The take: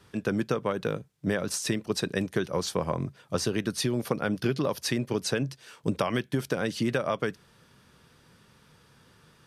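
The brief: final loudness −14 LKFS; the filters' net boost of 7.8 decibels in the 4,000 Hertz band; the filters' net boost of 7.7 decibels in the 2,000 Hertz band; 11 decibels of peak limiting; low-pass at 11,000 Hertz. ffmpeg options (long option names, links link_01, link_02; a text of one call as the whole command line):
ffmpeg -i in.wav -af "lowpass=11000,equalizer=frequency=2000:width_type=o:gain=8.5,equalizer=frequency=4000:width_type=o:gain=7.5,volume=16.5dB,alimiter=limit=-1.5dB:level=0:latency=1" out.wav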